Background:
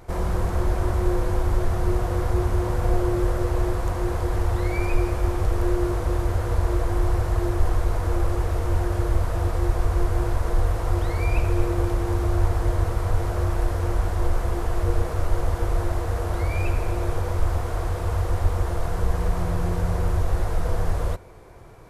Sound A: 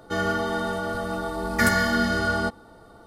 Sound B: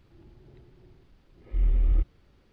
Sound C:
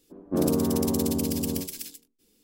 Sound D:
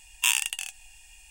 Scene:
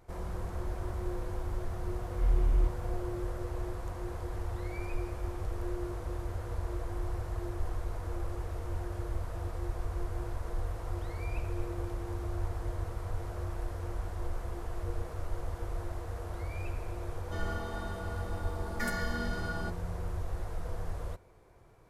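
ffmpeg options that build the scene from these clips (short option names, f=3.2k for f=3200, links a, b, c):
-filter_complex "[0:a]volume=-13.5dB[a];[2:a]aemphasis=mode=production:type=50kf,atrim=end=2.52,asetpts=PTS-STARTPTS,volume=-4dB,afade=t=in:d=0.004:c=hsin,afade=t=out:st=2.516:d=0.004:c=hsin,adelay=650[b];[1:a]atrim=end=3.06,asetpts=PTS-STARTPTS,volume=-14.5dB,afade=t=in:d=0.004:c=hsin,afade=t=out:st=3.056:d=0.004:c=hsin,adelay=17210[c];[a][b][c]amix=inputs=3:normalize=0"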